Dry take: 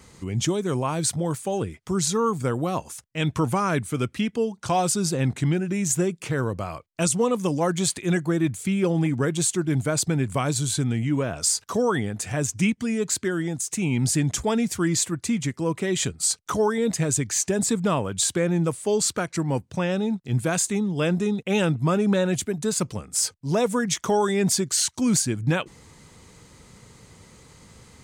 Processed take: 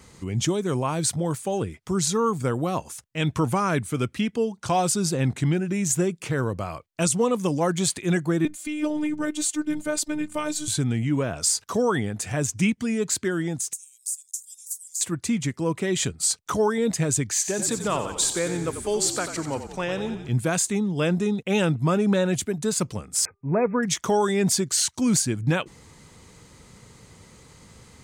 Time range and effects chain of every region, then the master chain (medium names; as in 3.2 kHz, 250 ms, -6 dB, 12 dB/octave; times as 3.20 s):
8.45–10.68 s: high-pass 140 Hz + robot voice 302 Hz
13.73–15.01 s: inverse Chebyshev high-pass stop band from 1.3 kHz, stop band 80 dB + compression 3:1, threshold -35 dBFS + tilt EQ +2.5 dB/octave
17.32–20.29 s: high-pass 410 Hz 6 dB/octave + frequency-shifting echo 90 ms, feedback 61%, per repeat -40 Hz, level -9.5 dB
23.25–23.83 s: brick-wall FIR low-pass 2.6 kHz + de-hum 398.9 Hz, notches 3
whole clip: none